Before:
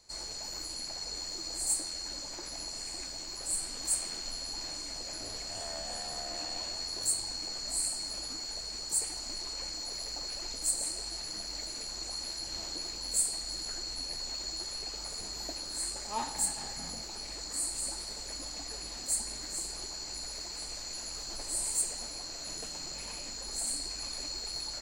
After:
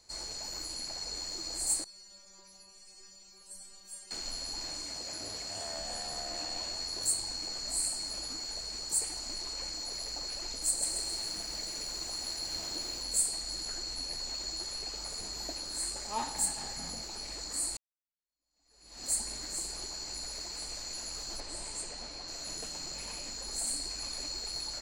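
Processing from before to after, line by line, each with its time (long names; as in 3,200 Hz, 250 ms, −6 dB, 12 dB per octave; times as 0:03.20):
0:01.84–0:04.11: stiff-string resonator 190 Hz, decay 0.5 s, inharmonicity 0.002
0:04.85–0:05.76: high-pass filter 60 Hz
0:10.69–0:13.03: feedback echo at a low word length 133 ms, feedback 55%, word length 9 bits, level −5 dB
0:17.77–0:19.05: fade in exponential
0:21.40–0:22.28: low-pass filter 5,000 Hz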